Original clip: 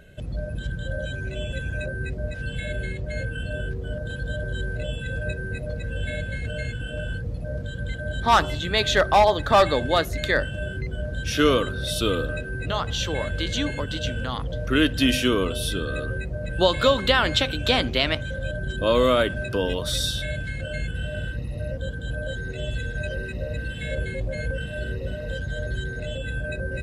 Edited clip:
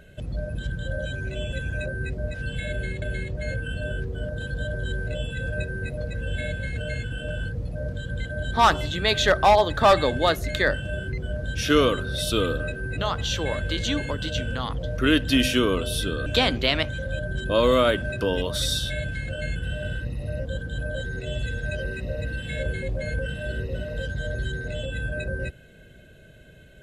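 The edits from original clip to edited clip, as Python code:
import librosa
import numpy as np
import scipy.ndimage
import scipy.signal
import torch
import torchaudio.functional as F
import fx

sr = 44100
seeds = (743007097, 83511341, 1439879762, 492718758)

y = fx.edit(x, sr, fx.repeat(start_s=2.71, length_s=0.31, count=2),
    fx.cut(start_s=15.95, length_s=1.63), tone=tone)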